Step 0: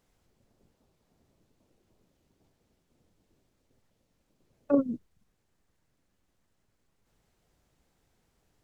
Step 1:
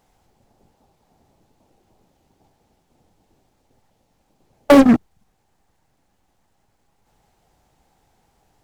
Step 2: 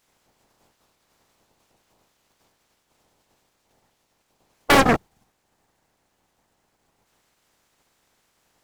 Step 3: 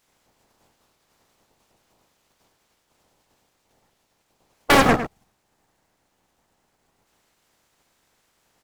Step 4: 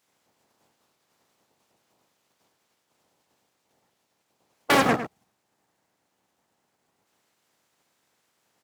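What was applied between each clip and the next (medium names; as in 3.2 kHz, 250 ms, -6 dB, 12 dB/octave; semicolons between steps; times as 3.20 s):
peaking EQ 810 Hz +11.5 dB 0.43 oct; in parallel at -4 dB: fuzz box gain 35 dB, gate -42 dBFS; on the sum: loudness maximiser +9 dB; trim -1 dB
spectral peaks clipped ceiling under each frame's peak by 21 dB; trim -5.5 dB
echo from a far wall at 18 m, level -10 dB
high-pass 120 Hz 12 dB/octave; trim -4.5 dB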